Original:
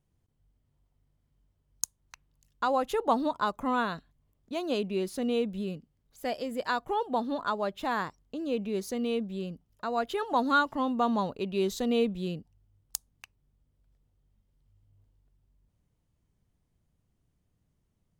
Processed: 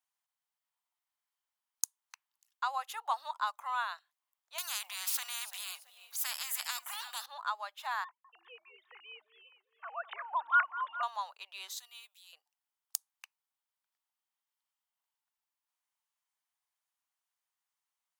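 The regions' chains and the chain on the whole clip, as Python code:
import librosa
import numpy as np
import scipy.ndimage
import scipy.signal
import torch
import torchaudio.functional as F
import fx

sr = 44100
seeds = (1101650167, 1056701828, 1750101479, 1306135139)

y = fx.chain(x, sr, fx.high_shelf(hz=7500.0, db=9.5),
    fx.echo_feedback(ms=336, feedback_pct=30, wet_db=-24.0),
    fx.spectral_comp(ratio=4.0), at=(4.58, 7.26))
y = fx.chain(y, sr, fx.sine_speech(),
    fx.echo_alternate(ms=204, hz=1300.0, feedback_pct=64, wet_db=-11), at=(8.04, 11.03))
y = fx.chain(y, sr, fx.transient(attack_db=-10, sustain_db=3),
    fx.differentiator(), at=(11.79, 12.33))
y = scipy.signal.sosfilt(scipy.signal.butter(6, 830.0, 'highpass', fs=sr, output='sos'), y)
y = fx.high_shelf(y, sr, hz=9200.0, db=5.0)
y = F.gain(torch.from_numpy(y), -3.5).numpy()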